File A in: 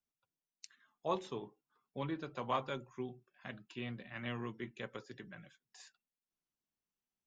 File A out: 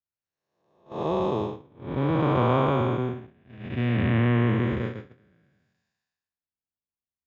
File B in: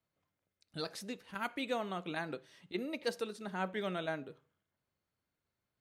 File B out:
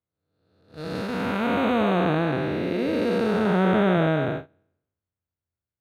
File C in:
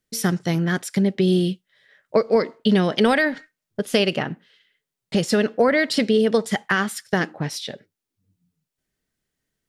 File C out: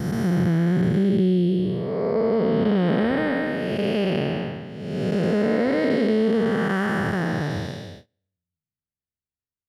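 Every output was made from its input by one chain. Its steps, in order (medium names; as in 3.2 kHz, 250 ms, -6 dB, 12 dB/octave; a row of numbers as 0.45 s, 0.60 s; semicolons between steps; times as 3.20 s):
spectral blur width 562 ms; gate -50 dBFS, range -28 dB; peaking EQ 83 Hz +13 dB 0.75 oct; compression 2.5:1, threshold -28 dBFS; peaking EQ 8.1 kHz -13.5 dB 2.2 oct; peak normalisation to -9 dBFS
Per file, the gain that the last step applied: +22.5 dB, +22.5 dB, +9.0 dB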